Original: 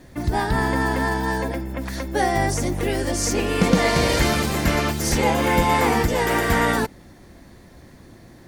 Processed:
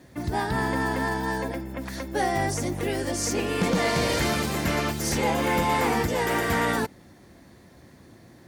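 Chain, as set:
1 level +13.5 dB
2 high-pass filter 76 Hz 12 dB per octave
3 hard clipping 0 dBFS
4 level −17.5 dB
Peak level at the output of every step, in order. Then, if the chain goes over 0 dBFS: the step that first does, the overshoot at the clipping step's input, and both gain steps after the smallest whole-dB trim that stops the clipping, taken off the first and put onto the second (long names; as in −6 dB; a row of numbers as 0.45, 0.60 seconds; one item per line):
+10.0, +9.5, 0.0, −17.5 dBFS
step 1, 9.5 dB
step 1 +3.5 dB, step 4 −7.5 dB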